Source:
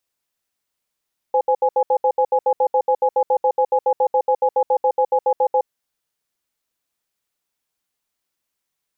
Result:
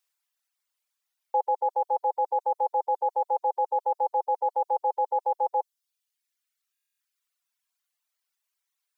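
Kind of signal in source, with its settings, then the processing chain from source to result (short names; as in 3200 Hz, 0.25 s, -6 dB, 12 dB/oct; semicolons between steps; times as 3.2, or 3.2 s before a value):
cadence 514 Hz, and 834 Hz, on 0.07 s, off 0.07 s, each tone -16 dBFS 4.28 s
HPF 890 Hz 12 dB/oct; reverb removal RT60 1.6 s; stuck buffer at 6.73, samples 1024, times 11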